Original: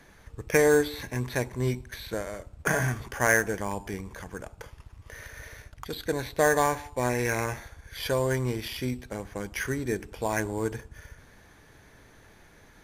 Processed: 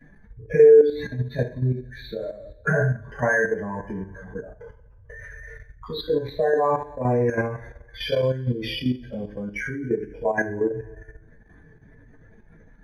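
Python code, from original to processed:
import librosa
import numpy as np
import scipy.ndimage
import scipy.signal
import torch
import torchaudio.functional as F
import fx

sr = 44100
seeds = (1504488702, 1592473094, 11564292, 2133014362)

y = fx.spec_expand(x, sr, power=2.4)
y = fx.rev_double_slope(y, sr, seeds[0], early_s=0.38, late_s=1.6, knee_db=-21, drr_db=-8.0)
y = fx.level_steps(y, sr, step_db=10)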